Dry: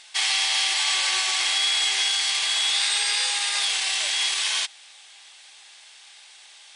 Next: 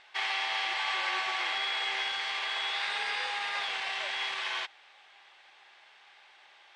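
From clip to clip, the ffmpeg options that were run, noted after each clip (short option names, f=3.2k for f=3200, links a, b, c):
-af "lowpass=1.8k"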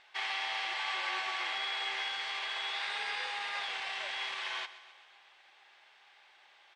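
-af "aecho=1:1:130|260|390|520|650|780:0.158|0.0951|0.0571|0.0342|0.0205|0.0123,volume=-4dB"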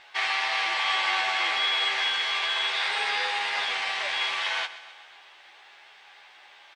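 -filter_complex "[0:a]asplit=2[a][b];[b]adelay=12,volume=-3.5dB[c];[a][c]amix=inputs=2:normalize=0,volume=8dB"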